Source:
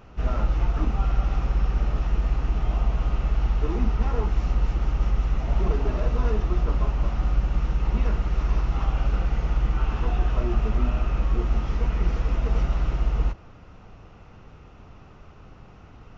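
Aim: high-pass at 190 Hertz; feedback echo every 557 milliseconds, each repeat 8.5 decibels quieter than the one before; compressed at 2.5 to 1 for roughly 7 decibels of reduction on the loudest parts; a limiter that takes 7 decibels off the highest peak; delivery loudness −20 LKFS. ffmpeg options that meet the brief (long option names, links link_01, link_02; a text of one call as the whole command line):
ffmpeg -i in.wav -af "highpass=190,acompressor=threshold=-38dB:ratio=2.5,alimiter=level_in=9.5dB:limit=-24dB:level=0:latency=1,volume=-9.5dB,aecho=1:1:557|1114|1671|2228:0.376|0.143|0.0543|0.0206,volume=23dB" out.wav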